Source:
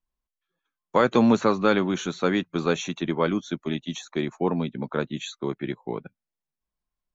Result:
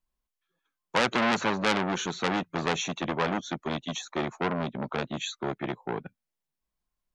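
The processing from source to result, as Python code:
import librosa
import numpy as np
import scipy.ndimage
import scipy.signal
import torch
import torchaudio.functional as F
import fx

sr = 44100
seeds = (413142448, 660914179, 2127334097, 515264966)

y = fx.transformer_sat(x, sr, knee_hz=3000.0)
y = F.gain(torch.from_numpy(y), 1.5).numpy()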